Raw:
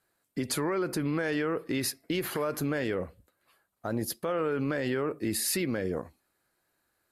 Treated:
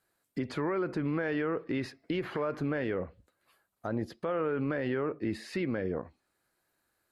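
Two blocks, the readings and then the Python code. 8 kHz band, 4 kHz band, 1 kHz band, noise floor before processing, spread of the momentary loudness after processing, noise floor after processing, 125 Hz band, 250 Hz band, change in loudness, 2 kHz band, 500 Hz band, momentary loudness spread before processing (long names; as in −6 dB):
below −20 dB, −10.0 dB, −1.5 dB, −77 dBFS, 7 LU, −79 dBFS, −1.5 dB, −1.5 dB, −2.5 dB, −2.5 dB, −1.5 dB, 7 LU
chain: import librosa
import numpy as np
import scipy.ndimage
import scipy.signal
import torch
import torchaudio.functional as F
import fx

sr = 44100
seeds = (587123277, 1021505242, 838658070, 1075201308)

y = fx.env_lowpass_down(x, sr, base_hz=2500.0, full_db=-30.5)
y = y * 10.0 ** (-1.5 / 20.0)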